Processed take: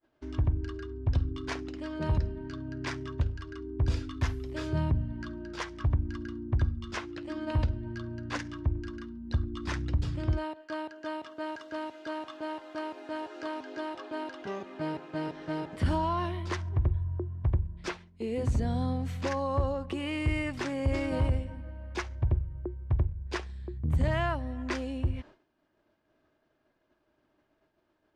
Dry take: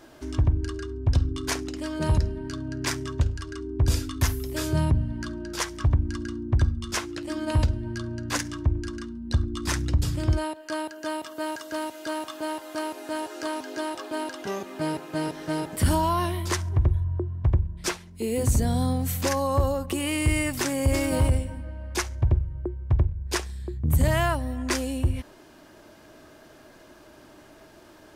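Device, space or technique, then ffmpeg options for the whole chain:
hearing-loss simulation: -af "lowpass=3500,agate=range=-33dB:threshold=-39dB:ratio=3:detection=peak,volume=-5.5dB"

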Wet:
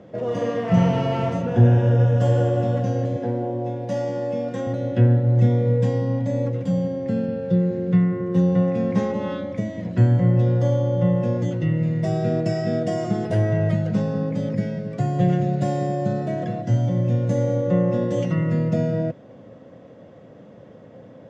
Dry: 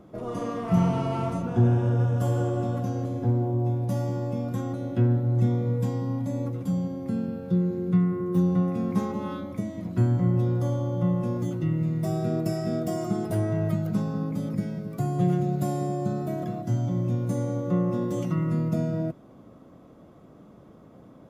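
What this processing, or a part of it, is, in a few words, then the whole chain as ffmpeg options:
car door speaker: -filter_complex "[0:a]asettb=1/sr,asplit=3[link_01][link_02][link_03];[link_01]atrim=end=3.164[link_04];[link_02]atrim=start=3.16:end=4.67,asetpts=PTS-STARTPTS,afade=type=in:duration=0.004:curve=qsin,afade=type=out:start_time=1.506:duration=0.004:curve=qsin,highpass=230[link_05];[link_03]atrim=start=4.666[link_06];[link_04][link_05]acrossfade=duration=0.004:curve1=hsin:curve2=qsin[link_07];[link_07][link_06]acrossfade=duration=0.004:curve1=qsin:curve2=hsin,highpass=92,equalizer=frequency=110:width_type=q:width=4:gain=5,equalizer=frequency=340:width_type=q:width=4:gain=-4,equalizer=frequency=520:width_type=q:width=4:gain=10,equalizer=frequency=1200:width_type=q:width=4:gain=-7,equalizer=frequency=1800:width_type=q:width=4:gain=9,equalizer=frequency=2900:width_type=q:width=4:gain=5,lowpass=frequency=6800:width=0.5412,lowpass=frequency=6800:width=1.3066,volume=4dB"

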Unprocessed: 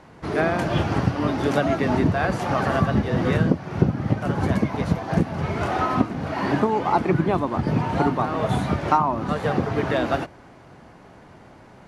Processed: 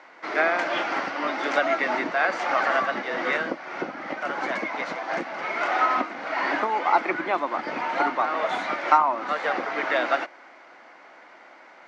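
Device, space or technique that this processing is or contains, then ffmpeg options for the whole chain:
phone speaker on a table: -af "highpass=frequency=360:width=0.5412,highpass=frequency=360:width=1.3066,equalizer=frequency=420:width_type=q:width=4:gain=-10,equalizer=frequency=1400:width_type=q:width=4:gain=5,equalizer=frequency=2100:width_type=q:width=4:gain=9,lowpass=frequency=6400:width=0.5412,lowpass=frequency=6400:width=1.3066"

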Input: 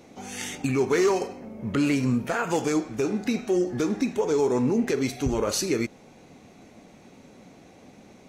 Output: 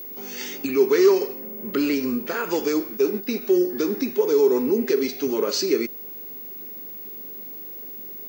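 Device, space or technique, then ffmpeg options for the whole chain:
old television with a line whistle: -filter_complex "[0:a]asplit=3[link_01][link_02][link_03];[link_01]afade=type=out:start_time=2.96:duration=0.02[link_04];[link_02]agate=range=-9dB:threshold=-27dB:ratio=16:detection=peak,afade=type=in:start_time=2.96:duration=0.02,afade=type=out:start_time=3.4:duration=0.02[link_05];[link_03]afade=type=in:start_time=3.4:duration=0.02[link_06];[link_04][link_05][link_06]amix=inputs=3:normalize=0,highpass=frequency=210:width=0.5412,highpass=frequency=210:width=1.3066,equalizer=frequency=400:width_type=q:width=4:gain=8,equalizer=frequency=730:width_type=q:width=4:gain=-8,equalizer=frequency=4800:width_type=q:width=4:gain=8,lowpass=frequency=6700:width=0.5412,lowpass=frequency=6700:width=1.3066,aeval=exprs='val(0)+0.02*sin(2*PI*15625*n/s)':channel_layout=same"

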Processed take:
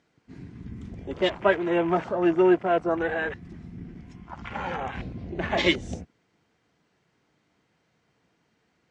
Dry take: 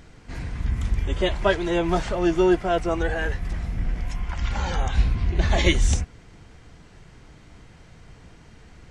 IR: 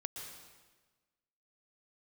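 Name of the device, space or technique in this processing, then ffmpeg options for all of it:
over-cleaned archive recording: -af "highpass=190,lowpass=7300,afwtdn=0.02"

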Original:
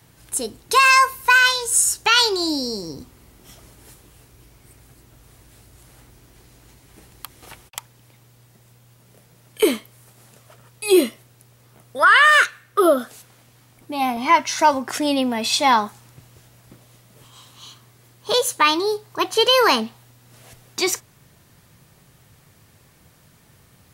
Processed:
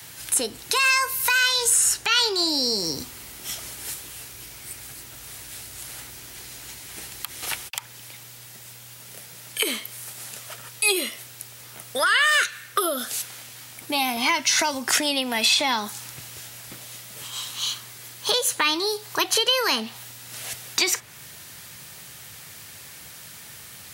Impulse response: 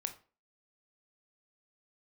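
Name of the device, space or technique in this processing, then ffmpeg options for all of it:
mastering chain: -filter_complex "[0:a]highpass=49,equalizer=frequency=1100:width_type=o:width=0.25:gain=-3.5,acrossover=split=430|2900[link_01][link_02][link_03];[link_01]acompressor=threshold=-27dB:ratio=4[link_04];[link_02]acompressor=threshold=-29dB:ratio=4[link_05];[link_03]acompressor=threshold=-35dB:ratio=4[link_06];[link_04][link_05][link_06]amix=inputs=3:normalize=0,acompressor=threshold=-30dB:ratio=3,tiltshelf=frequency=930:gain=-8,alimiter=level_in=16dB:limit=-1dB:release=50:level=0:latency=1,volume=-7.5dB"

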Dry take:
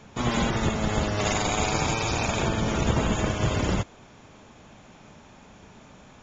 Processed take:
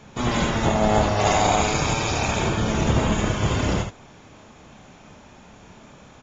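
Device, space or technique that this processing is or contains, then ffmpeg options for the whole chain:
slapback doubling: -filter_complex "[0:a]asplit=3[link_01][link_02][link_03];[link_02]adelay=28,volume=-7dB[link_04];[link_03]adelay=75,volume=-7dB[link_05];[link_01][link_04][link_05]amix=inputs=3:normalize=0,asettb=1/sr,asplit=3[link_06][link_07][link_08];[link_06]atrim=end=0.644[link_09];[link_07]atrim=start=0.64:end=1.62,asetpts=PTS-STARTPTS,afade=type=in:duration=0.004:curve=qsin,afade=type=out:start_time=0.976:duration=0.004:curve=qsin,equalizer=frequency=720:width_type=o:width=0.81:gain=9.5[link_10];[link_08]atrim=start=1.616[link_11];[link_09][link_10]acrossfade=duration=0.004:curve1=hsin:curve2=qsin[link_12];[link_12][link_11]acrossfade=duration=0.004:curve1=qsin:curve2=hsin,volume=1.5dB"

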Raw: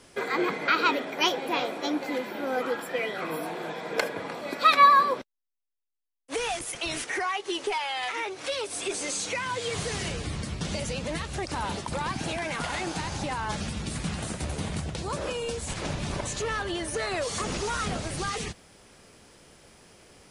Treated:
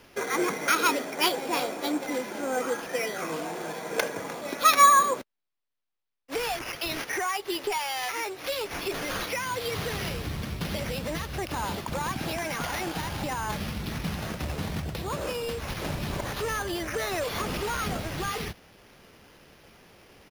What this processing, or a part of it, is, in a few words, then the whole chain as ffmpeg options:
crushed at another speed: -af "asetrate=35280,aresample=44100,acrusher=samples=7:mix=1:aa=0.000001,asetrate=55125,aresample=44100"

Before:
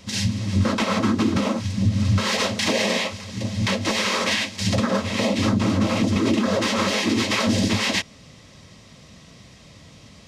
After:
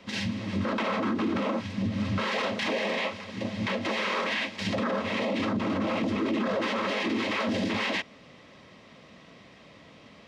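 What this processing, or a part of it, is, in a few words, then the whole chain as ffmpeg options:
DJ mixer with the lows and highs turned down: -filter_complex "[0:a]acrossover=split=210 3400:gain=0.178 1 0.126[link_01][link_02][link_03];[link_01][link_02][link_03]amix=inputs=3:normalize=0,alimiter=limit=-20.5dB:level=0:latency=1:release=19"

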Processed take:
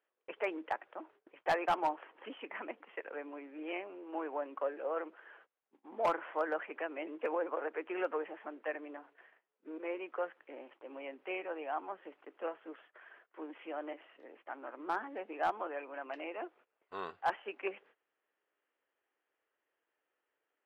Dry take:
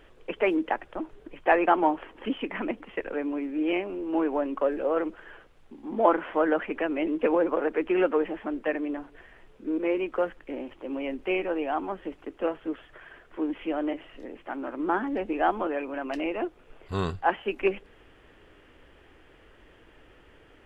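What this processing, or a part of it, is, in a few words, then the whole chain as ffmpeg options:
walkie-talkie: -af "highpass=560,lowpass=2500,asoftclip=type=hard:threshold=-17dB,agate=range=-19dB:threshold=-54dB:ratio=16:detection=peak,volume=-7dB"

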